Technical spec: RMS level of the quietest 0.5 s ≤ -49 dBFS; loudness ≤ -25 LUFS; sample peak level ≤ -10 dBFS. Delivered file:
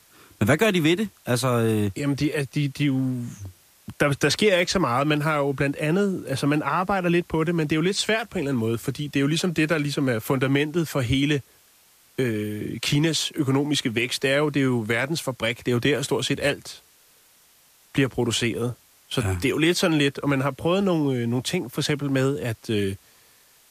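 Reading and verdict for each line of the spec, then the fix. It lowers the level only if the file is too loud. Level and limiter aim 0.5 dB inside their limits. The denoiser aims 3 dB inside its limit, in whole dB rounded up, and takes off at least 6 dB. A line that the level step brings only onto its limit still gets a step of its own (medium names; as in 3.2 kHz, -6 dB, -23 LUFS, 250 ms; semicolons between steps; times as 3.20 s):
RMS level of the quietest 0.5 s -57 dBFS: pass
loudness -23.5 LUFS: fail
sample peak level -6.5 dBFS: fail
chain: trim -2 dB; peak limiter -10.5 dBFS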